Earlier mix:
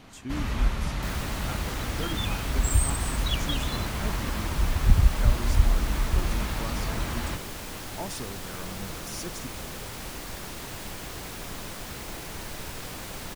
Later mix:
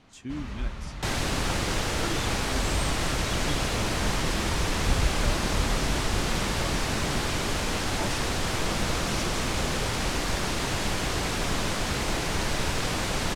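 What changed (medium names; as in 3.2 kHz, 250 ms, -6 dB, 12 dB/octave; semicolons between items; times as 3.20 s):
first sound -7.5 dB; second sound +10.5 dB; master: add low-pass 7.8 kHz 12 dB/octave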